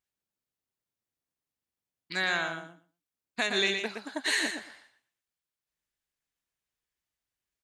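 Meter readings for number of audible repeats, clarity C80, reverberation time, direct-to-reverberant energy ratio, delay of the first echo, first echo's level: 2, none, none, none, 0.117 s, -6.0 dB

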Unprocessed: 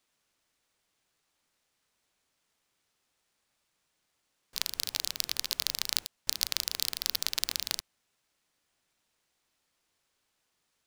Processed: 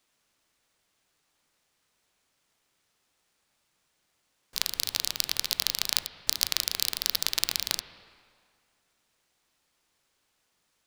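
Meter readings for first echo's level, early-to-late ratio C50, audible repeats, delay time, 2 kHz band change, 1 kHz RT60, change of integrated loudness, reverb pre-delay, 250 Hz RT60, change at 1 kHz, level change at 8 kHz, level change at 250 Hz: none, 11.5 dB, none, none, +4.0 dB, 2.1 s, +3.5 dB, 12 ms, 2.0 s, +4.0 dB, +3.5 dB, +4.0 dB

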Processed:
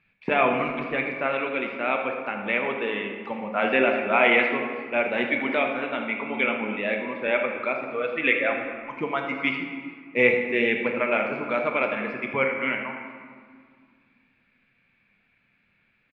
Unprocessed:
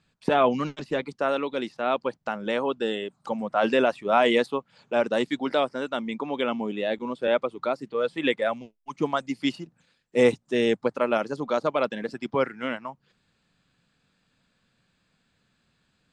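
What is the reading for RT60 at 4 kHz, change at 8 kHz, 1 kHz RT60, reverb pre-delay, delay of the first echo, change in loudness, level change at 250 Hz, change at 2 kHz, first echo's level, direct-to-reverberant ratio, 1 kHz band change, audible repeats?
1.1 s, n/a, 2.0 s, 5 ms, 80 ms, +1.5 dB, -1.0 dB, +8.5 dB, -12.0 dB, 2.0 dB, 0.0 dB, 1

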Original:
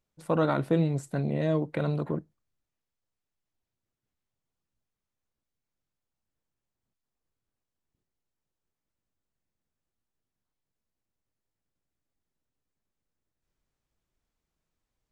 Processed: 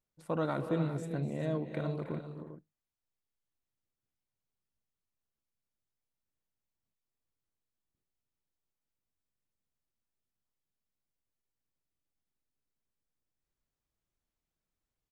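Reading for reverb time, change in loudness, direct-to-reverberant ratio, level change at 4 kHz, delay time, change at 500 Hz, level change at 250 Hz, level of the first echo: none, -7.0 dB, none, -7.0 dB, 0.249 s, -7.0 dB, -6.5 dB, -15.5 dB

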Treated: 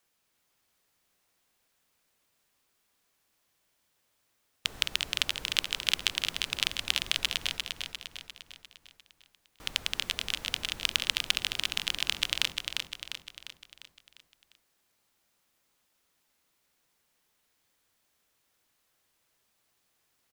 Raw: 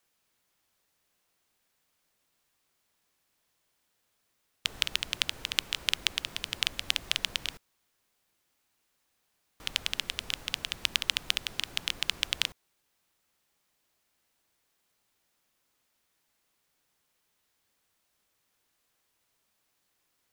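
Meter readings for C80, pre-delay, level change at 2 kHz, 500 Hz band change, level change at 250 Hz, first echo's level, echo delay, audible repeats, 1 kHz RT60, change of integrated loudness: none, none, +1.5 dB, +1.5 dB, +1.5 dB, -5.0 dB, 0.35 s, 5, none, +1.0 dB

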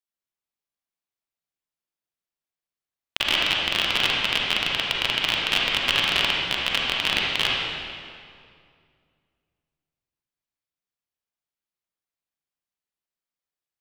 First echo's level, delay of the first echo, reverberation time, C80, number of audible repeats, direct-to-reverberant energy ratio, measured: none, none, 2.3 s, 0.5 dB, none, -3.5 dB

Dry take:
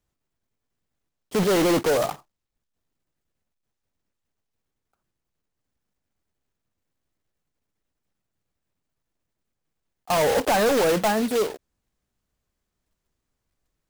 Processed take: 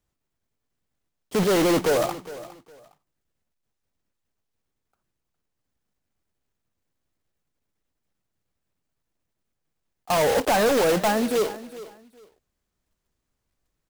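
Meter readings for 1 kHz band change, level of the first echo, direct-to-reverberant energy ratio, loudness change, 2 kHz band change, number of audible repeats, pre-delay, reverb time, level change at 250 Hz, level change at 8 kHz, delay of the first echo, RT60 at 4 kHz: 0.0 dB, -16.5 dB, none, 0.0 dB, 0.0 dB, 2, none, none, 0.0 dB, 0.0 dB, 0.41 s, none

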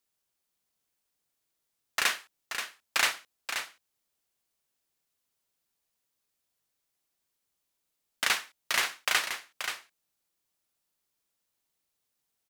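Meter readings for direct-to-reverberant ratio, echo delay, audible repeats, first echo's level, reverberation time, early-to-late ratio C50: none, 0.53 s, 1, -8.0 dB, none, none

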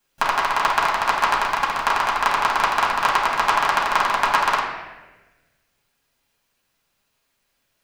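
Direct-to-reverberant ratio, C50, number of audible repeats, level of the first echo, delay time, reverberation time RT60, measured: -7.0 dB, 3.0 dB, none, none, none, 1.2 s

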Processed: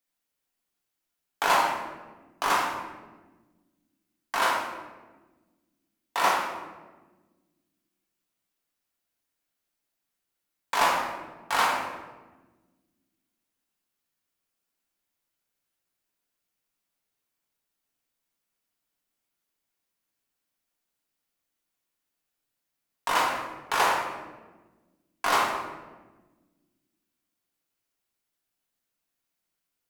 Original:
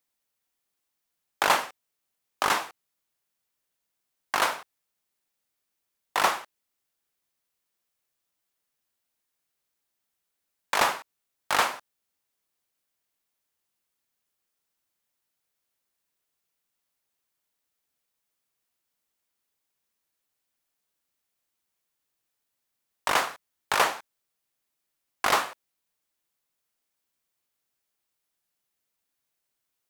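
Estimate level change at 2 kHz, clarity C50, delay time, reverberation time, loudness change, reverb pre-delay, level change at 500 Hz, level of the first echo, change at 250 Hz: 0.0 dB, 2.0 dB, none, 1.3 s, -0.5 dB, 4 ms, +0.5 dB, none, +2.5 dB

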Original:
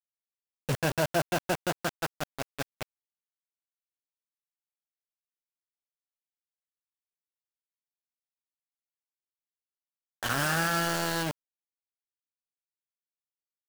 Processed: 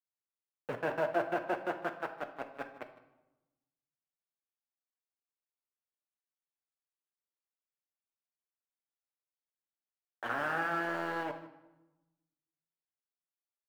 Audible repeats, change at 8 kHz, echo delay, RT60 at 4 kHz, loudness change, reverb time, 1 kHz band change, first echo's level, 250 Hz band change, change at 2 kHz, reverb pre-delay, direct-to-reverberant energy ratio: 1, -26.0 dB, 0.155 s, 0.70 s, -5.5 dB, 1.0 s, -3.0 dB, -18.5 dB, -6.5 dB, -5.0 dB, 8 ms, 5.5 dB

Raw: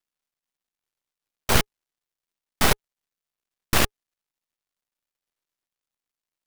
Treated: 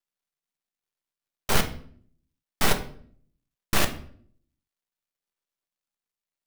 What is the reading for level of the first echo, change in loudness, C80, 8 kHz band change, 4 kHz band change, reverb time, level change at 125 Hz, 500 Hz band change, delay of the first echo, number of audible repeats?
none, -3.5 dB, 16.0 dB, -3.5 dB, -3.5 dB, 0.55 s, -3.5 dB, -2.5 dB, none, none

